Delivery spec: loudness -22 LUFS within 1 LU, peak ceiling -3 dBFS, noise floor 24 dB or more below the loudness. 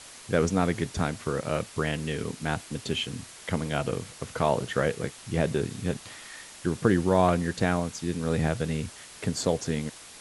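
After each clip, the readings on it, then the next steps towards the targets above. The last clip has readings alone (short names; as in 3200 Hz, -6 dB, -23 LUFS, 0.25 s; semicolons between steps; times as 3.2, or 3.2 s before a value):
noise floor -47 dBFS; noise floor target -53 dBFS; loudness -28.5 LUFS; peak -8.0 dBFS; loudness target -22.0 LUFS
-> denoiser 6 dB, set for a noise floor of -47 dBFS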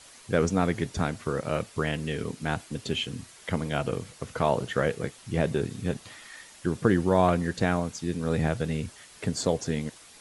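noise floor -52 dBFS; noise floor target -53 dBFS
-> denoiser 6 dB, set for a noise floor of -52 dBFS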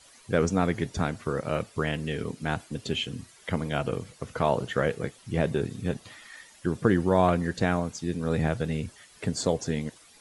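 noise floor -55 dBFS; loudness -28.5 LUFS; peak -8.0 dBFS; loudness target -22.0 LUFS
-> gain +6.5 dB; limiter -3 dBFS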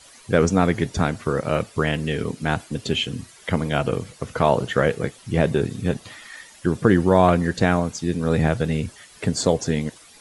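loudness -22.0 LUFS; peak -3.0 dBFS; noise floor -49 dBFS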